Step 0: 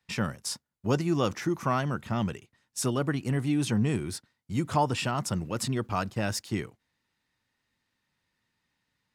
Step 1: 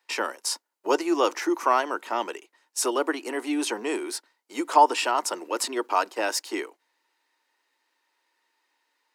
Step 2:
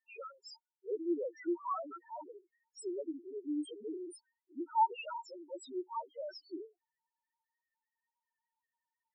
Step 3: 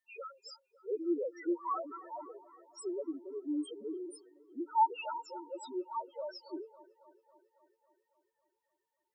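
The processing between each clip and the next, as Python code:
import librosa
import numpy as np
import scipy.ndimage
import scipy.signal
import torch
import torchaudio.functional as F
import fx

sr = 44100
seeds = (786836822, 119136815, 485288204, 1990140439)

y1 = scipy.signal.sosfilt(scipy.signal.butter(8, 310.0, 'highpass', fs=sr, output='sos'), x)
y1 = fx.peak_eq(y1, sr, hz=930.0, db=7.5, octaves=0.26)
y1 = fx.notch(y1, sr, hz=3500.0, q=20.0)
y1 = y1 * librosa.db_to_amplitude(5.5)
y2 = fx.spec_topn(y1, sr, count=1)
y2 = y2 * librosa.db_to_amplitude(-4.5)
y3 = fx.echo_wet_bandpass(y2, sr, ms=275, feedback_pct=64, hz=790.0, wet_db=-17)
y3 = y3 * librosa.db_to_amplitude(1.5)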